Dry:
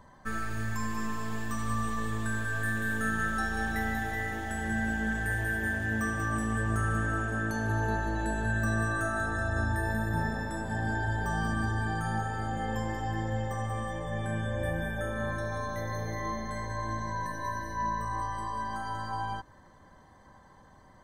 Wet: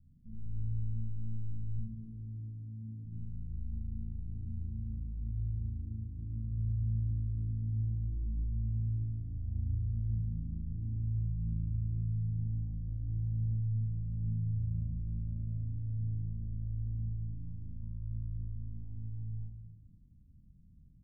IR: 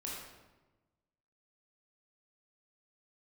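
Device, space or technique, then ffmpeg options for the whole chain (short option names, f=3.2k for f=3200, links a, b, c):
club heard from the street: -filter_complex "[0:a]asettb=1/sr,asplit=3[a][b][c];[a]atrim=end=1.784[d];[b]atrim=start=1.78:end=3.05,asetpts=PTS-STARTPTS,afade=t=in:d=0.004:c=qsin,afade=t=out:st=1.266:d=0.004:c=qsin,highpass=170[e];[c]atrim=start=3.046[f];[d][e]acrossfade=d=0.004:c1=hsin:c2=qsin[g];[g][f]acrossfade=d=0.004:c1=qsin:c2=hsin,alimiter=level_in=1.5dB:limit=-24dB:level=0:latency=1:release=70,volume=-1.5dB,lowpass=f=180:w=0.5412,lowpass=f=180:w=1.3066[h];[1:a]atrim=start_sample=2205[i];[h][i]afir=irnorm=-1:irlink=0"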